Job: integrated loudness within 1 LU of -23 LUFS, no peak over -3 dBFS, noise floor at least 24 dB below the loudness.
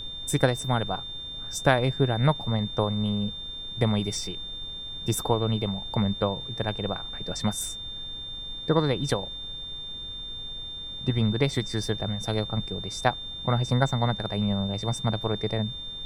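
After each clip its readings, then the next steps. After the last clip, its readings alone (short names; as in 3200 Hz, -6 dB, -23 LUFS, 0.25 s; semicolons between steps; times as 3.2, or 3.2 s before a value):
steady tone 3600 Hz; tone level -35 dBFS; noise floor -37 dBFS; noise floor target -52 dBFS; loudness -28.0 LUFS; peak -6.5 dBFS; loudness target -23.0 LUFS
-> notch 3600 Hz, Q 30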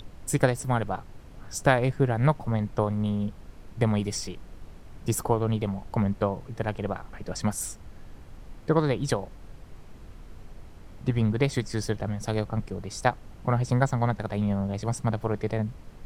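steady tone none; noise floor -47 dBFS; noise floor target -52 dBFS
-> noise print and reduce 6 dB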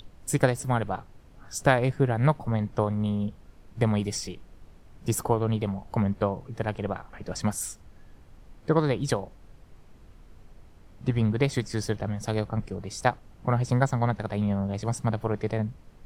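noise floor -52 dBFS; loudness -28.0 LUFS; peak -6.5 dBFS; loudness target -23.0 LUFS
-> gain +5 dB; limiter -3 dBFS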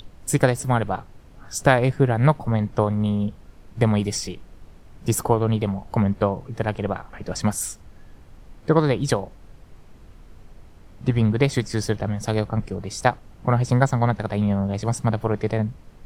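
loudness -23.0 LUFS; peak -3.0 dBFS; noise floor -47 dBFS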